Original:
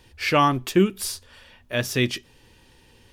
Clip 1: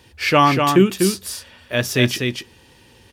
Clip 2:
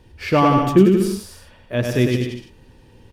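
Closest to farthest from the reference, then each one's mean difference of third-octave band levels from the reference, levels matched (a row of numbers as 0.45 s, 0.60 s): 1, 2; 5.0 dB, 8.0 dB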